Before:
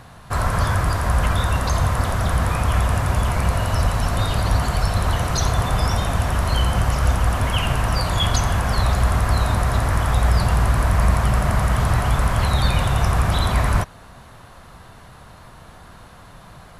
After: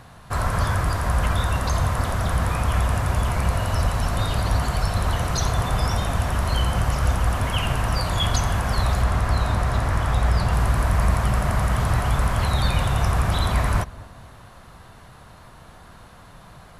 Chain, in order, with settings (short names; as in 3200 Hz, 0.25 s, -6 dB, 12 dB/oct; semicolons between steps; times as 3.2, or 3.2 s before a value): 9.02–10.53 high shelf 9600 Hz -9 dB; on a send: darkening echo 0.227 s, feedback 53%, low-pass 960 Hz, level -19 dB; on the sum: gain -2.5 dB